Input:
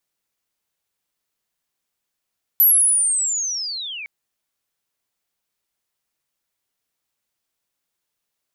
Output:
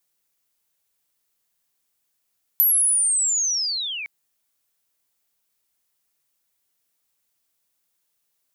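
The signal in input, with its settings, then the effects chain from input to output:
chirp linear 12000 Hz -> 2200 Hz -9.5 dBFS -> -29.5 dBFS 1.46 s
high shelf 6600 Hz +8.5 dB; compressor 3:1, threshold -21 dBFS

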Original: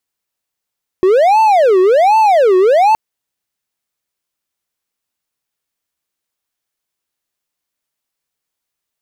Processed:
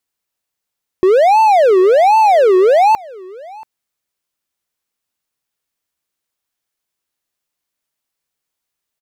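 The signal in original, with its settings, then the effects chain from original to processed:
siren wail 367–886 Hz 1.3/s triangle -4.5 dBFS 1.92 s
echo 0.682 s -23 dB

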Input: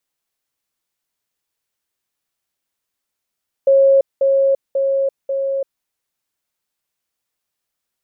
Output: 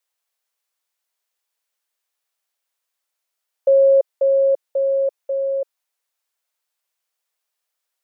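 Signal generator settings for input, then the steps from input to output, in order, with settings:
level ladder 545 Hz -8 dBFS, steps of -3 dB, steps 4, 0.34 s 0.20 s
HPF 470 Hz 24 dB/oct

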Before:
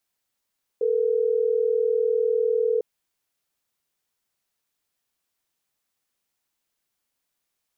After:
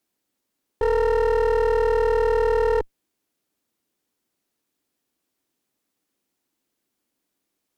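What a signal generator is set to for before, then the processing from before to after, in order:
call progress tone ringback tone, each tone -22 dBFS
bell 290 Hz +14.5 dB 1.4 oct; one-sided clip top -31 dBFS, bottom -12 dBFS

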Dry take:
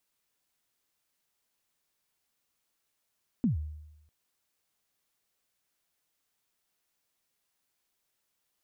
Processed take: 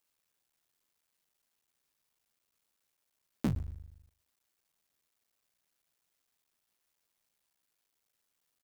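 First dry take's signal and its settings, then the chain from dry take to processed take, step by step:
kick drum length 0.65 s, from 270 Hz, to 76 Hz, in 0.127 s, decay 0.93 s, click off, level -21 dB
cycle switcher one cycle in 3, muted; feedback echo 0.119 s, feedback 25%, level -21.5 dB

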